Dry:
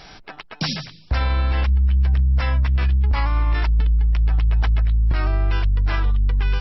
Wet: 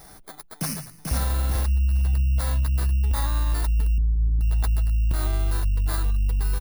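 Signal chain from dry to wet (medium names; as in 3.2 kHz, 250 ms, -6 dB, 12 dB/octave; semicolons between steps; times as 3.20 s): bit-reversed sample order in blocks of 16 samples; 0.54–1.13 s: echo throw 440 ms, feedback 35%, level -4 dB; 3.98–4.41 s: inverse Chebyshev low-pass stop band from 1.4 kHz, stop band 70 dB; trim -4 dB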